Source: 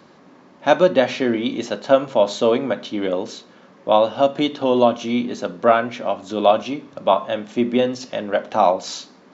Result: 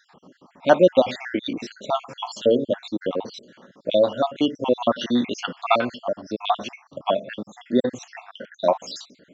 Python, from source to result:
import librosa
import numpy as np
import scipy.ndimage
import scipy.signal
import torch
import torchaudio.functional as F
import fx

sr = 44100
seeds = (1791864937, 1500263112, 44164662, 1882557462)

y = fx.spec_dropout(x, sr, seeds[0], share_pct=63)
y = fx.peak_eq(y, sr, hz=fx.line((4.89, 1400.0), (5.9, 4400.0)), db=14.0, octaves=1.4, at=(4.89, 5.9), fade=0.02)